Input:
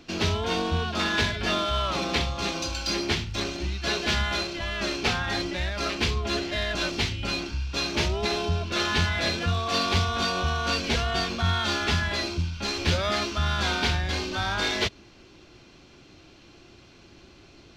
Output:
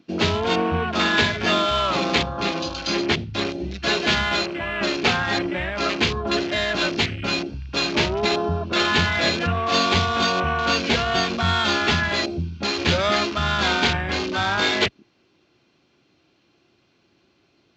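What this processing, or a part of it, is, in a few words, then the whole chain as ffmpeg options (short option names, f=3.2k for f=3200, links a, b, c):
over-cleaned archive recording: -filter_complex "[0:a]highpass=120,lowpass=5.6k,afwtdn=0.0178,asettb=1/sr,asplit=3[a][b][c];[a]atrim=end=2.284[d];[b]atrim=start=2.28:end=3.47,asetpts=PTS-STARTPTS,afade=t=in:d=0.004:c=qsin,afade=t=out:st=1.186:d=0.004:c=qsin,highshelf=f=7.2k:g=-7[e];[c]atrim=start=3.466[f];[d][e]acrossfade=d=0.004:c1=hsin:c2=qsin[g];[g][f]acrossfade=d=0.004:c1=qsin:c2=hsin,volume=6.5dB"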